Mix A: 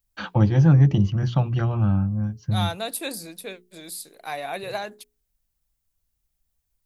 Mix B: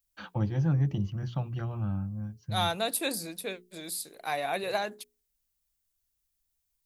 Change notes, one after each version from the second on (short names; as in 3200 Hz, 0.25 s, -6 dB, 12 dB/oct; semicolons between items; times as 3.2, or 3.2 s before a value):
first voice -11.0 dB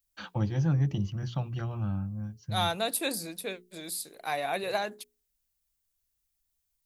first voice: add high shelf 3900 Hz +9.5 dB